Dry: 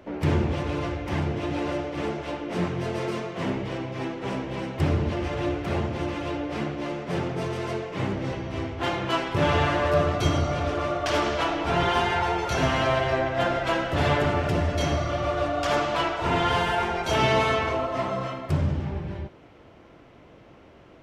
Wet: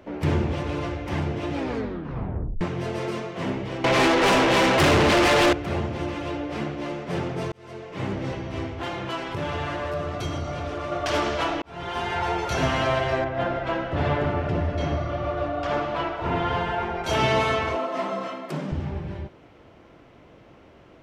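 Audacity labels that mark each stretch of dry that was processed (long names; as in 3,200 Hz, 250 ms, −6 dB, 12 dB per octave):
1.530000	1.530000	tape stop 1.08 s
3.840000	5.530000	mid-hump overdrive drive 32 dB, tone 7,800 Hz, clips at −11 dBFS
7.520000	8.140000	fade in
8.710000	10.920000	downward compressor 2.5 to 1, threshold −28 dBFS
11.620000	12.320000	fade in
13.240000	17.040000	head-to-tape spacing loss at 10 kHz 21 dB
17.760000	18.720000	Butterworth high-pass 160 Hz 72 dB per octave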